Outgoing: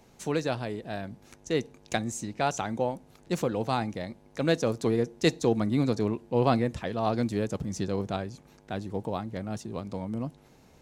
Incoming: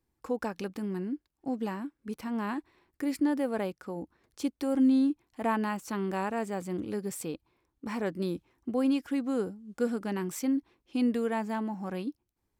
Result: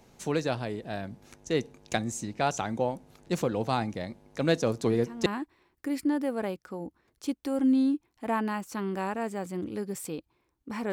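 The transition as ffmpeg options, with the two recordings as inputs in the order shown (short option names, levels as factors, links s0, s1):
-filter_complex "[1:a]asplit=2[s0][s1];[0:a]apad=whole_dur=10.92,atrim=end=10.92,atrim=end=5.262[s2];[s1]atrim=start=2.418:end=8.08[s3];[s0]atrim=start=1.96:end=2.42,asetpts=PTS-STARTPTS,volume=0.398,afade=t=in:d=0.004:c=hsin,afade=t=out:st=0.456:d=0.004:c=hsin,adelay=4800[s4];[s2][s3]acrossfade=d=0.004:c1=hsin:c2=hsin[s5];[s5][s4]amix=inputs=2:normalize=0"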